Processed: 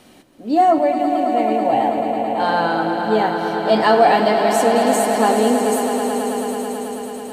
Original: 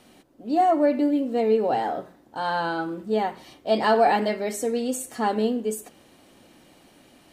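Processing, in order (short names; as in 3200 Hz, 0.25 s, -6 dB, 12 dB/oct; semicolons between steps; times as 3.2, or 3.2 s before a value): 0.78–2.4 fixed phaser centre 1400 Hz, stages 6; swelling echo 0.109 s, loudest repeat 5, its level -10 dB; gain +6 dB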